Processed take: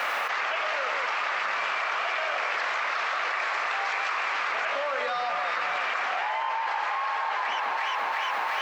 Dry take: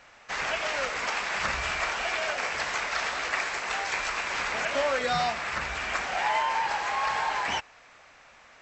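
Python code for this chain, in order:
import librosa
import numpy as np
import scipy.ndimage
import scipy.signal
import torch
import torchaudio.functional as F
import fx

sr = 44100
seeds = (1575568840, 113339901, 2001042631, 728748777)

p1 = scipy.signal.sosfilt(scipy.signal.butter(2, 3600.0, 'lowpass', fs=sr, output='sos'), x)
p2 = fx.quant_dither(p1, sr, seeds[0], bits=12, dither='none')
p3 = scipy.signal.sosfilt(scipy.signal.butter(2, 520.0, 'highpass', fs=sr, output='sos'), p2)
p4 = fx.peak_eq(p3, sr, hz=1200.0, db=5.0, octaves=0.27)
p5 = p4 + fx.echo_alternate(p4, sr, ms=177, hz=1500.0, feedback_pct=72, wet_db=-6.5, dry=0)
p6 = fx.env_flatten(p5, sr, amount_pct=100)
y = p6 * librosa.db_to_amplitude(-5.0)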